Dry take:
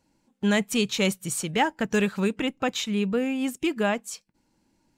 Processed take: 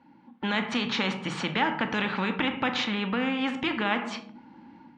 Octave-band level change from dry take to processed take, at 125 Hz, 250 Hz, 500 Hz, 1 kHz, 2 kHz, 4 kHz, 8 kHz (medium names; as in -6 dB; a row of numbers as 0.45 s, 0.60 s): -4.0 dB, -3.5 dB, -6.5 dB, +1.0 dB, +1.5 dB, +0.5 dB, -14.5 dB